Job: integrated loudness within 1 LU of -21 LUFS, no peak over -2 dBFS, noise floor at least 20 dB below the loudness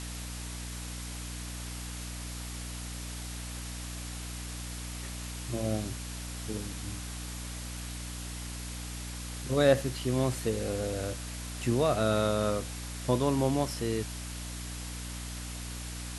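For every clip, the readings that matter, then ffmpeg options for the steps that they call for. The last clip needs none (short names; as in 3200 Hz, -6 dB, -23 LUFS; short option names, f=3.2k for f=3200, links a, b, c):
hum 60 Hz; harmonics up to 300 Hz; hum level -38 dBFS; noise floor -39 dBFS; noise floor target -54 dBFS; loudness -33.5 LUFS; peak -11.5 dBFS; loudness target -21.0 LUFS
-> -af "bandreject=f=60:t=h:w=6,bandreject=f=120:t=h:w=6,bandreject=f=180:t=h:w=6,bandreject=f=240:t=h:w=6,bandreject=f=300:t=h:w=6"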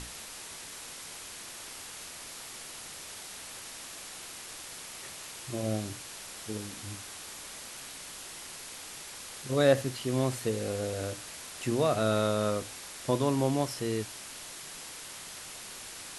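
hum none; noise floor -45 dBFS; noise floor target -55 dBFS
-> -af "afftdn=nr=10:nf=-45"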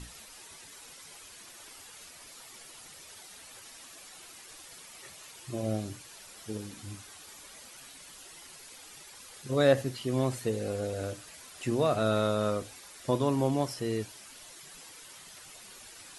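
noise floor -51 dBFS; loudness -31.0 LUFS; peak -11.0 dBFS; loudness target -21.0 LUFS
-> -af "volume=10dB,alimiter=limit=-2dB:level=0:latency=1"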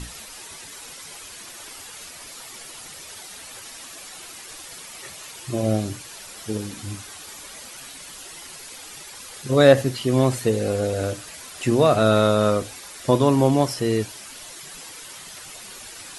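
loudness -21.0 LUFS; peak -2.0 dBFS; noise floor -41 dBFS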